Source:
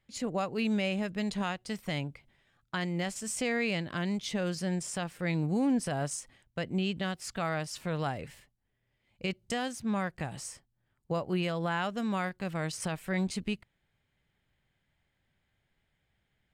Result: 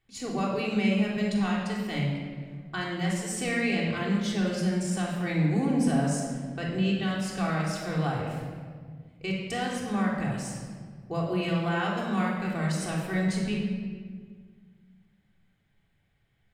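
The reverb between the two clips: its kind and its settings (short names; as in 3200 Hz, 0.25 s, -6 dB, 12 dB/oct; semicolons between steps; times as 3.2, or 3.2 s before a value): shoebox room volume 2200 m³, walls mixed, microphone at 3.5 m; gain -2.5 dB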